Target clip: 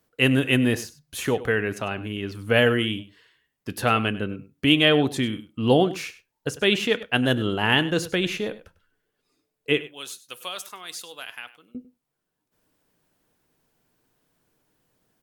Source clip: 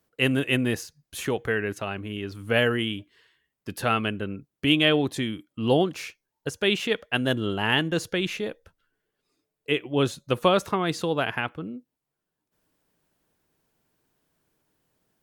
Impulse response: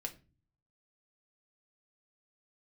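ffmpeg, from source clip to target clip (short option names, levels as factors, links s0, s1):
-filter_complex "[0:a]asettb=1/sr,asplit=3[s0][s1][s2];[s0]atrim=end=9.814[s3];[s1]atrim=start=9.81:end=11.75,asetpts=PTS-STARTPTS,afade=t=in:d=0.004:c=qsin,afade=t=out:st=1.936:d=0.004:c=qsin,aderivative[s4];[s2]atrim=start=11.746[s5];[s3][s4]acrossfade=d=0.004:c1=hsin:c2=qsin[s6];[s6][s5]acrossfade=d=0.004:c1=qsin:c2=hsin,aecho=1:1:99:0.15,asplit=2[s7][s8];[1:a]atrim=start_sample=2205,afade=t=out:st=0.17:d=0.01,atrim=end_sample=7938[s9];[s8][s9]afir=irnorm=-1:irlink=0,volume=0.501[s10];[s7][s10]amix=inputs=2:normalize=0"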